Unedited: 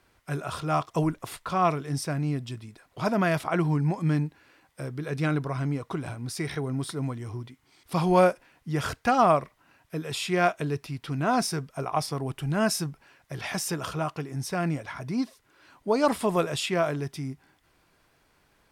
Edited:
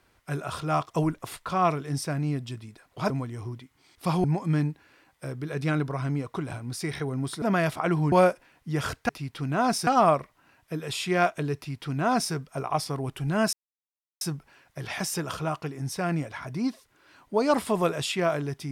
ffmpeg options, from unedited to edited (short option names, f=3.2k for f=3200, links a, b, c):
-filter_complex "[0:a]asplit=8[a][b][c][d][e][f][g][h];[a]atrim=end=3.102[i];[b]atrim=start=6.978:end=8.122[j];[c]atrim=start=3.798:end=6.982[k];[d]atrim=start=3.098:end=3.802[l];[e]atrim=start=8.118:end=9.092[m];[f]atrim=start=10.778:end=11.562[n];[g]atrim=start=9.088:end=12.75,asetpts=PTS-STARTPTS,afade=t=out:st=3.658:d=0.004:c=hsin,apad=pad_dur=0.68[o];[h]atrim=start=12.75,asetpts=PTS-STARTPTS,afade=t=in:d=0.004:c=hsin[p];[i][j]acrossfade=d=0.004:c1=hsin:c2=hsin[q];[q][k]acrossfade=d=0.004:c1=hsin:c2=hsin[r];[r][l]acrossfade=d=0.004:c1=hsin:c2=hsin[s];[s][m]acrossfade=d=0.004:c1=hsin:c2=hsin[t];[t][n]acrossfade=d=0.004:c1=hsin:c2=hsin[u];[o][p]concat=n=2:v=0:a=1[v];[u][v]acrossfade=d=0.004:c1=hsin:c2=hsin"